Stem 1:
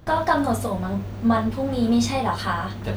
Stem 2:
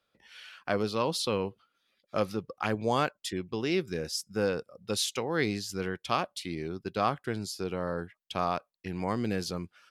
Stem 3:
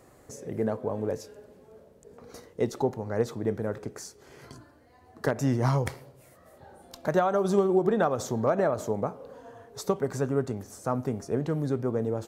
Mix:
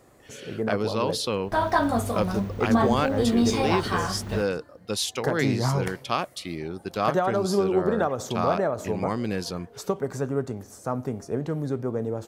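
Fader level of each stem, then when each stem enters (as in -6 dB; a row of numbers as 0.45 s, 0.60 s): -2.0 dB, +2.5 dB, 0.0 dB; 1.45 s, 0.00 s, 0.00 s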